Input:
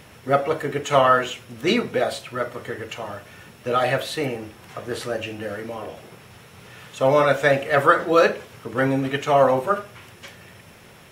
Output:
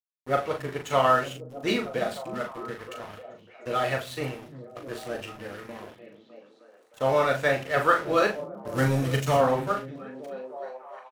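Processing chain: crossover distortion -35 dBFS; 8.67–9.37 s: tone controls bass +10 dB, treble +11 dB; doubling 39 ms -6 dB; on a send: repeats whose band climbs or falls 306 ms, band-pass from 150 Hz, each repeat 0.7 oct, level -6 dB; on the sum: trim -5.5 dB

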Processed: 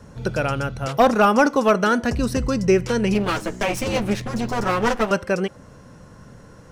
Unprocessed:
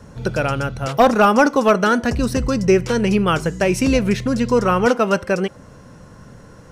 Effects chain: 3.14–5.11 s: comb filter that takes the minimum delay 9.3 ms; trim -2.5 dB

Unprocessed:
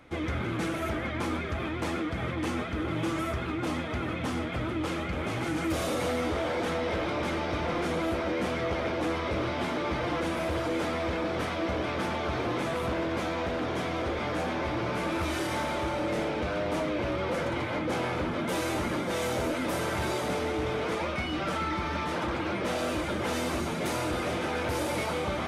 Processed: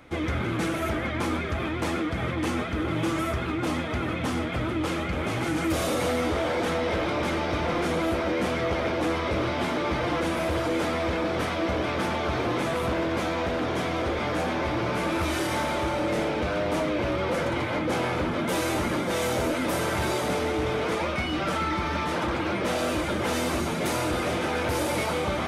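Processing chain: treble shelf 9.6 kHz +3.5 dB; trim +3.5 dB

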